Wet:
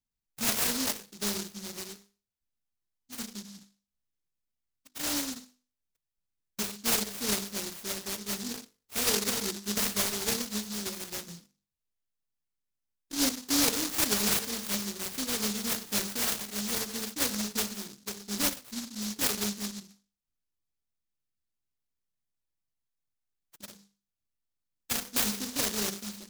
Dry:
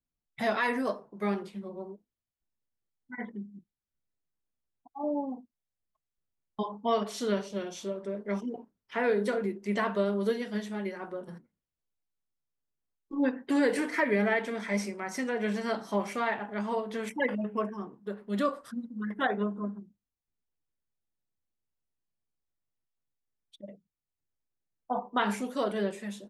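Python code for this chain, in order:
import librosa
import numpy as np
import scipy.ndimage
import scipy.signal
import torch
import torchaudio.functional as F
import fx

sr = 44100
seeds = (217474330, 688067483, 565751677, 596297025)

y = fx.hum_notches(x, sr, base_hz=50, count=10)
y = fx.noise_mod_delay(y, sr, seeds[0], noise_hz=5200.0, depth_ms=0.47)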